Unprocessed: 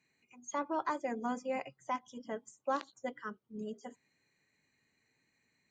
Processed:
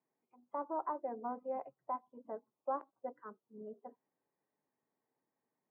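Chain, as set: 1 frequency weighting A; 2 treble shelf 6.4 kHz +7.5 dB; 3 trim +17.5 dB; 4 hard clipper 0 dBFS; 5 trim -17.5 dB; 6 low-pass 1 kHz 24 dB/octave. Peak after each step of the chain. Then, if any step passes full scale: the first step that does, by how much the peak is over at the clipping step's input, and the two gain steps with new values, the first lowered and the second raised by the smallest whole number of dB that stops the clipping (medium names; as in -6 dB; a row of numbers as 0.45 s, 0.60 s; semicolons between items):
-22.0 dBFS, -21.5 dBFS, -4.0 dBFS, -4.0 dBFS, -21.5 dBFS, -25.5 dBFS; nothing clips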